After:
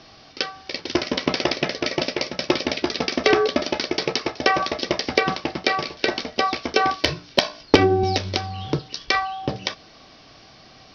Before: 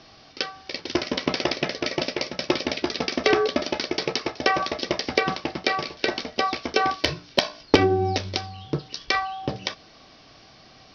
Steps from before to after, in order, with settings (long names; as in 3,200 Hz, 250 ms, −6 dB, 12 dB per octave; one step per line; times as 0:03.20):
0:08.03–0:08.79: multiband upward and downward compressor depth 70%
level +2.5 dB